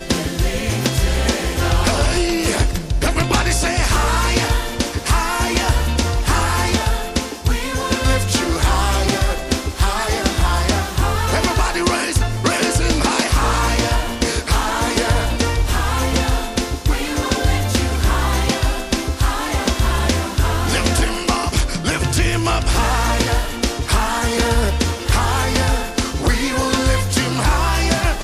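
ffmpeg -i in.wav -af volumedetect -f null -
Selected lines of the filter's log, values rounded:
mean_volume: -17.4 dB
max_volume: -5.7 dB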